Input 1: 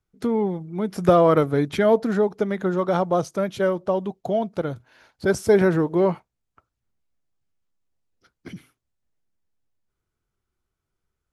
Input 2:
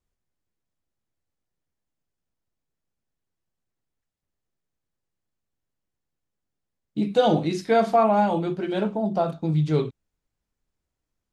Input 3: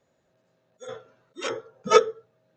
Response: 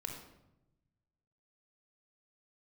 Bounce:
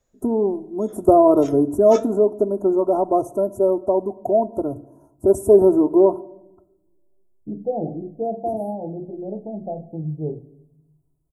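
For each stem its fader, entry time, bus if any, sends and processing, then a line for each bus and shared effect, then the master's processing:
+0.5 dB, 0.00 s, send -12.5 dB, inverse Chebyshev band-stop 1900–4200 Hz, stop band 60 dB; comb 3 ms, depth 93%
-6.5 dB, 0.50 s, send -11 dB, steep low-pass 770 Hz 72 dB/oct
-1.5 dB, 0.00 s, no send, bell 6700 Hz +11.5 dB 0.89 oct; flange 0.79 Hz, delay 7.3 ms, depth 8.6 ms, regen +71%; auto duck -10 dB, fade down 0.85 s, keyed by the first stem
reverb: on, RT60 0.90 s, pre-delay 25 ms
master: dry

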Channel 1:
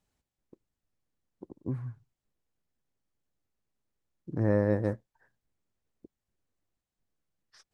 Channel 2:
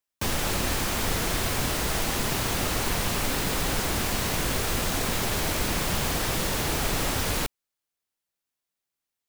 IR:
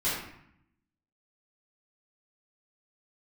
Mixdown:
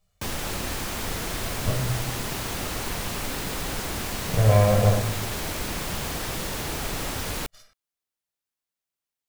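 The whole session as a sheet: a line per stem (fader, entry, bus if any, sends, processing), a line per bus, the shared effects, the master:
+2.5 dB, 0.00 s, send -7 dB, minimum comb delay 1.4 ms; comb 1.7 ms, depth 71%; limiter -16 dBFS, peak gain reduction 5 dB
-3.5 dB, 0.00 s, no send, dry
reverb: on, RT60 0.70 s, pre-delay 3 ms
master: dry

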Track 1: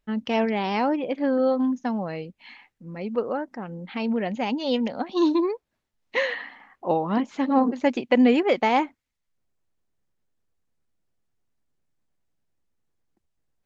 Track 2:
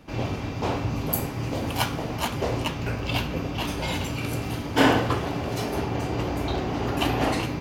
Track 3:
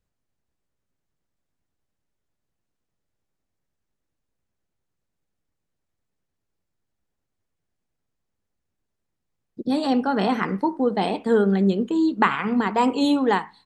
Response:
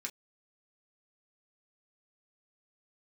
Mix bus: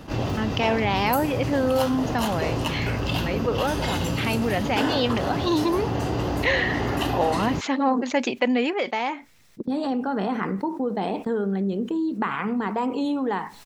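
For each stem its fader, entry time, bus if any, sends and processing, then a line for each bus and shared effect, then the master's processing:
+1.5 dB, 0.30 s, no bus, send -21.5 dB, low shelf 500 Hz -9 dB; upward compressor, threshold -34 dBFS; auto duck -23 dB, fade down 1.20 s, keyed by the third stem
-3.0 dB, 0.00 s, bus A, no send, notch 2300 Hz, Q 6.5
-8.0 dB, 0.00 s, bus A, no send, high shelf 2800 Hz -9.5 dB
bus A: 0.0 dB, gate -39 dBFS, range -11 dB; compressor 2.5:1, threshold -29 dBFS, peak gain reduction 8.5 dB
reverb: on, pre-delay 3 ms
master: fast leveller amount 50%

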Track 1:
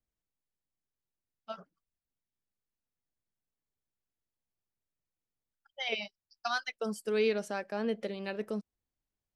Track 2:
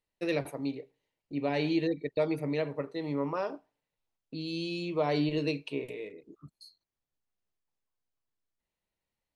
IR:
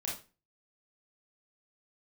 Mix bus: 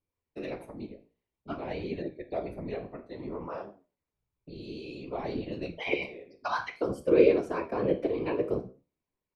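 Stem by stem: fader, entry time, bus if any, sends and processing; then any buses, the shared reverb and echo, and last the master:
+1.0 dB, 0.00 s, send -8.5 dB, small resonant body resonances 380/1000/2300 Hz, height 14 dB, ringing for 30 ms
-3.0 dB, 0.15 s, send -11 dB, dry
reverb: on, RT60 0.30 s, pre-delay 26 ms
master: high shelf 3100 Hz -8.5 dB; whisperiser; flange 0.54 Hz, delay 9.7 ms, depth 9.9 ms, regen +69%

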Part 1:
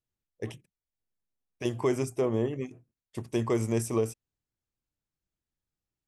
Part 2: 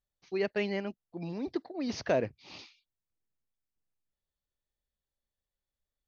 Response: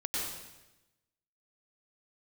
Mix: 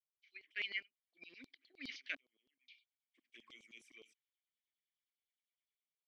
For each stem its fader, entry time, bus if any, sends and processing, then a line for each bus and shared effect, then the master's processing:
-2.0 dB, 0.00 s, no send, envelope flanger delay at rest 11.7 ms, full sweep at -23.5 dBFS; auto duck -22 dB, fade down 1.10 s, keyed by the second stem
-2.0 dB, 0.00 s, muted 2.15–2.68, no send, AGC gain up to 10.5 dB; ending taper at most 310 dB/s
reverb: off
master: vowel filter i; LFO high-pass saw down 9.7 Hz 780–4500 Hz

